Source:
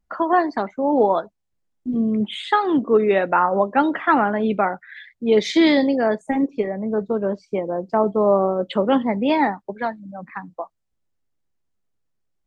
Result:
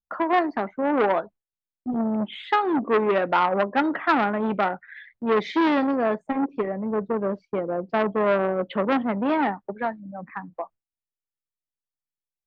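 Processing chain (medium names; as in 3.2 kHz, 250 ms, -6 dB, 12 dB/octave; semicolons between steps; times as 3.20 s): low-pass 2.4 kHz 12 dB/octave; gate with hold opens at -37 dBFS; transformer saturation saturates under 1.2 kHz; trim -1.5 dB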